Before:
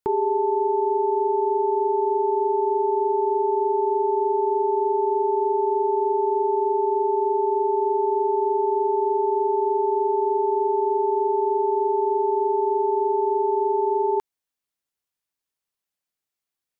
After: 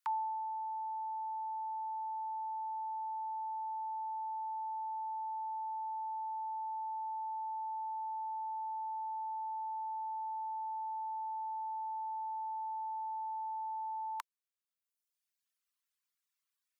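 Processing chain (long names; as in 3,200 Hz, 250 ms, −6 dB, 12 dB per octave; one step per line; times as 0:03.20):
reverb reduction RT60 1.5 s
Butterworth high-pass 950 Hz 72 dB per octave
level +1.5 dB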